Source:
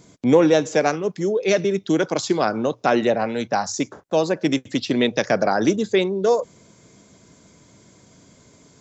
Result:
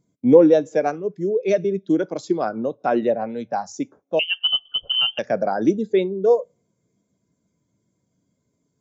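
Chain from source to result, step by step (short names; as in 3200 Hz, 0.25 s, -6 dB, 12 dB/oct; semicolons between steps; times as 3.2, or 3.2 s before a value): two-slope reverb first 0.44 s, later 1.6 s, DRR 19 dB; 4.19–5.19 inverted band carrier 3300 Hz; spectral expander 1.5:1; gain +2.5 dB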